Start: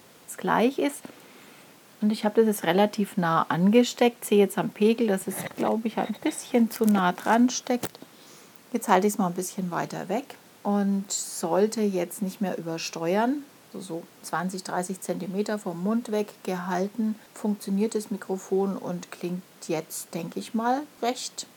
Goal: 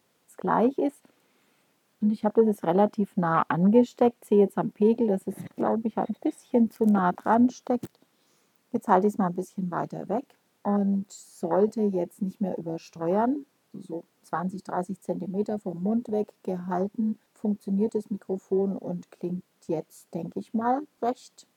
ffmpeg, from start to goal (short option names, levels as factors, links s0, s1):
-af "afwtdn=0.0501"